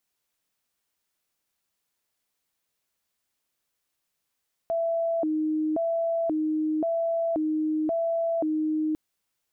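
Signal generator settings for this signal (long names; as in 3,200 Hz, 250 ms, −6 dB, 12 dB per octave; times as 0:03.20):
siren hi-lo 310–666 Hz 0.94 per second sine −23 dBFS 4.25 s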